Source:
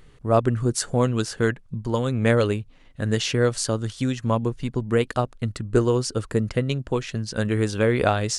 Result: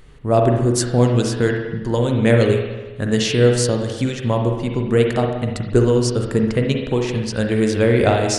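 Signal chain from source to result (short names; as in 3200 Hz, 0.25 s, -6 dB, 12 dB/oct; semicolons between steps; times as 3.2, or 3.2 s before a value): dynamic EQ 1200 Hz, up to -7 dB, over -40 dBFS, Q 1.8; spring tank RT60 1.2 s, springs 41/60 ms, chirp 35 ms, DRR 2 dB; gain +4 dB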